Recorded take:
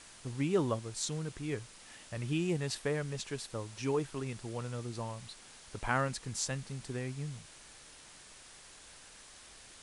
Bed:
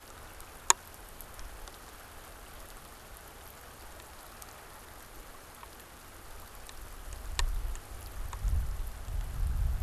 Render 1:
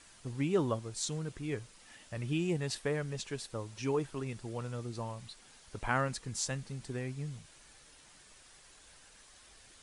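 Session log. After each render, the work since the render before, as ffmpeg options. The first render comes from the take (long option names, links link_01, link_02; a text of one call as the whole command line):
ffmpeg -i in.wav -af "afftdn=noise_reduction=6:noise_floor=-55" out.wav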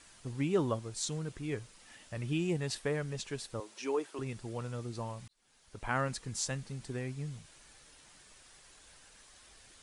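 ffmpeg -i in.wav -filter_complex "[0:a]asettb=1/sr,asplit=3[link_01][link_02][link_03];[link_01]atrim=end=3.604[link_04];[link_02]atrim=start=3.6:end=4.19,asetpts=PTS-STARTPTS,afade=type=in:duration=0.004:curve=qsin,afade=type=out:start_time=0.586:duration=0.004:curve=qsin,highpass=frequency=290:width=0.5412,highpass=frequency=290:width=1.3066[link_05];[link_03]atrim=start=4.186[link_06];[link_04][link_05]acrossfade=duration=0.004:curve1=hsin:curve2=qsin[link_07];[link_07][link_06]acrossfade=duration=0.004:curve1=qsin:curve2=hsin,asplit=2[link_08][link_09];[link_08]atrim=end=5.28,asetpts=PTS-STARTPTS,afade=type=out:start_time=5.276:duration=0.004:curve=hsin[link_10];[link_09]atrim=start=5.28,asetpts=PTS-STARTPTS,afade=type=in:duration=0.8[link_11];[link_10][link_11]concat=n=2:v=0:a=1" out.wav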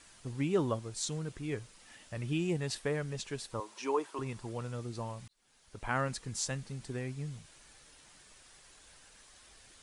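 ffmpeg -i in.wav -filter_complex "[0:a]asettb=1/sr,asplit=3[link_01][link_02][link_03];[link_01]atrim=end=3.514[link_04];[link_02]atrim=start=3.51:end=4.52,asetpts=PTS-STARTPTS,afade=type=in:duration=0.004:curve=qsin,afade=type=out:start_time=1.006:duration=0.004:curve=qsin,equalizer=frequency=1000:width=3:gain=9.5[link_05];[link_03]atrim=start=4.516[link_06];[link_04][link_05]acrossfade=duration=0.004:curve1=hsin:curve2=qsin[link_07];[link_07][link_06]acrossfade=duration=0.004:curve1=qsin:curve2=hsin" out.wav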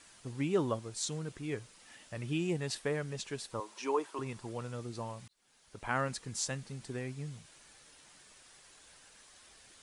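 ffmpeg -i in.wav -af "lowshelf=frequency=70:gain=-10.5" out.wav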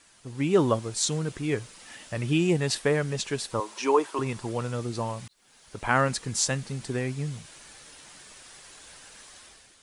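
ffmpeg -i in.wav -af "dynaudnorm=framelen=120:gausssize=7:maxgain=10dB" out.wav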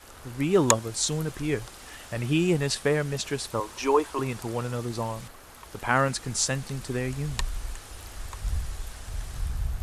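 ffmpeg -i in.wav -i bed.wav -filter_complex "[1:a]volume=1.5dB[link_01];[0:a][link_01]amix=inputs=2:normalize=0" out.wav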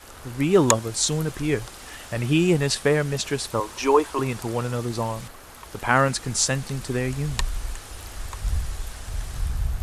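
ffmpeg -i in.wav -af "volume=4dB,alimiter=limit=-1dB:level=0:latency=1" out.wav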